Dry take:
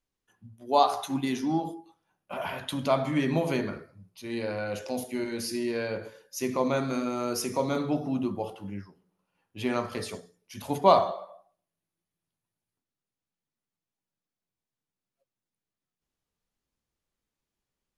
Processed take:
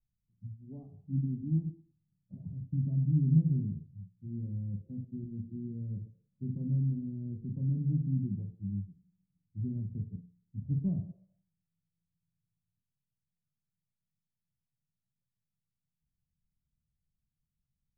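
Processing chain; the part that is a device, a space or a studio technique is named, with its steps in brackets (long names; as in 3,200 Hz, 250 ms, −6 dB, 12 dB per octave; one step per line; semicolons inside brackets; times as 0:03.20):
the neighbour's flat through the wall (low-pass filter 170 Hz 24 dB per octave; parametric band 150 Hz +4 dB)
level +5.5 dB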